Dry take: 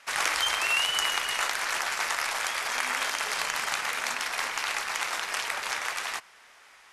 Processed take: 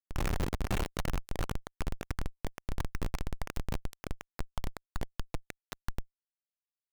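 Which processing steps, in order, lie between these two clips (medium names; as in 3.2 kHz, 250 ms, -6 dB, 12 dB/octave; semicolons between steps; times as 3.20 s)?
Schmitt trigger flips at -18.5 dBFS; trim +1.5 dB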